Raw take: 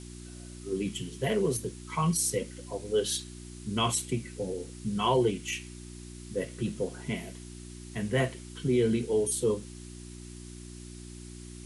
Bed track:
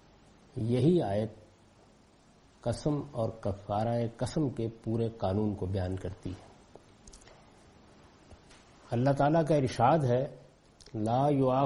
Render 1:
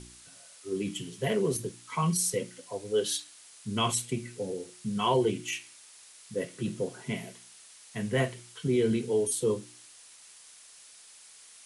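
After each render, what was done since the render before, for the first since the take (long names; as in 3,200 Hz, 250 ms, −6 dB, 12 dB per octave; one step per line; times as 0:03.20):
hum removal 60 Hz, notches 6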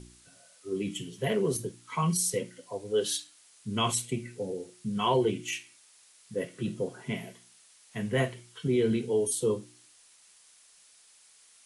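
noise reduction from a noise print 6 dB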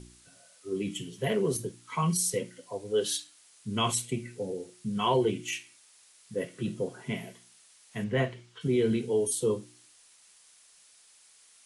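0:08.04–0:08.61: high-frequency loss of the air 87 metres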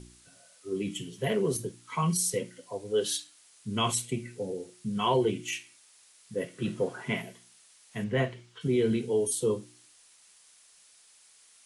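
0:06.62–0:07.22: parametric band 1,300 Hz +9 dB 2.2 octaves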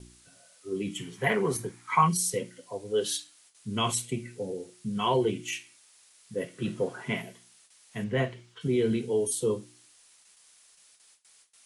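noise gate with hold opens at −48 dBFS
0:00.98–0:02.08: gain on a spectral selection 710–2,500 Hz +10 dB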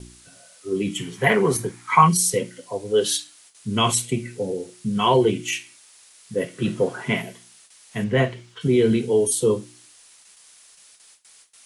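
level +8 dB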